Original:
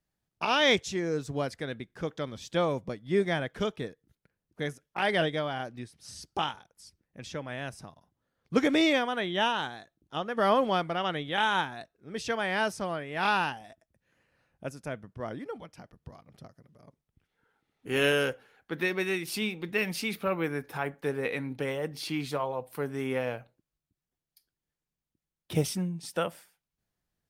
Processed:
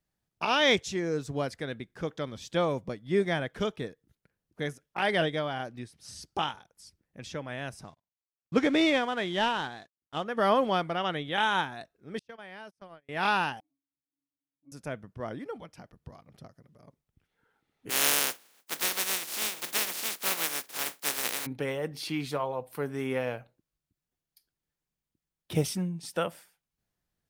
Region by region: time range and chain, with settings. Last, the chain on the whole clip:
0:07.84–0:10.24: variable-slope delta modulation 64 kbit/s + noise gate −56 dBFS, range −30 dB + low-pass filter 5,700 Hz
0:12.19–0:13.09: noise gate −32 dBFS, range −39 dB + parametric band 7,300 Hz −7 dB 0.28 octaves + downward compressor 3 to 1, threshold −47 dBFS
0:13.60–0:14.72: formant filter u + parametric band 2,500 Hz −14 dB 1.1 octaves + resonances in every octave C#, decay 0.31 s
0:17.89–0:21.45: compressing power law on the bin magnitudes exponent 0.15 + high-pass filter 230 Hz
whole clip: no processing

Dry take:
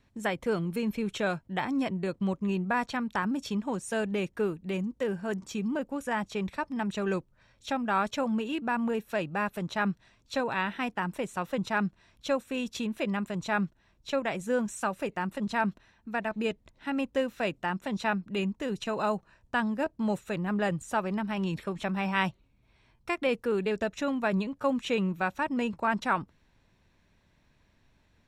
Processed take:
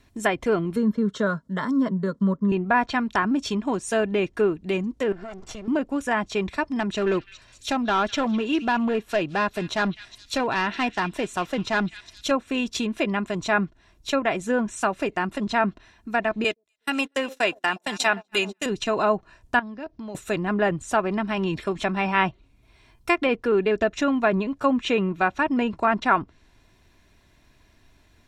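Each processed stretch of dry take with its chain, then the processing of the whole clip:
0:00.76–0:02.52: high-pass filter 74 Hz + parametric band 180 Hz +5 dB 1.3 octaves + phaser with its sweep stopped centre 500 Hz, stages 8
0:05.12–0:05.68: lower of the sound and its delayed copy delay 1.4 ms + high-frequency loss of the air 100 metres + downward compressor 10 to 1, threshold −40 dBFS
0:06.80–0:12.31: gain into a clipping stage and back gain 24.5 dB + echo through a band-pass that steps 205 ms, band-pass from 2,900 Hz, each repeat 0.7 octaves, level −9.5 dB
0:16.44–0:18.66: RIAA equalisation recording + delay that swaps between a low-pass and a high-pass 123 ms, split 800 Hz, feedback 67%, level −12 dB + noise gate −39 dBFS, range −34 dB
0:19.59–0:20.15: Butterworth low-pass 5,900 Hz 48 dB per octave + downward compressor 3 to 1, threshold −43 dBFS
whole clip: treble cut that deepens with the level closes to 2,400 Hz, closed at −24.5 dBFS; high-shelf EQ 6,800 Hz +8.5 dB; comb filter 2.9 ms, depth 39%; level +7 dB

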